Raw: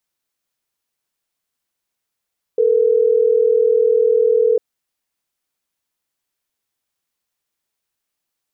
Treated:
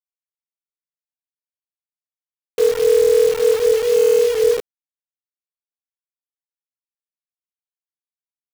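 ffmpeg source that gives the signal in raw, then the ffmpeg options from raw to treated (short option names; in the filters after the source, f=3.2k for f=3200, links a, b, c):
-f lavfi -i "aevalsrc='0.2*(sin(2*PI*440*t)+sin(2*PI*480*t))*clip(min(mod(t,6),2-mod(t,6))/0.005,0,1)':d=3.12:s=44100"
-filter_complex "[0:a]asplit=2[a][b];[b]alimiter=limit=-20dB:level=0:latency=1:release=114,volume=-3dB[c];[a][c]amix=inputs=2:normalize=0,flanger=delay=18.5:depth=6.8:speed=0.49,acrusher=bits=5:dc=4:mix=0:aa=0.000001"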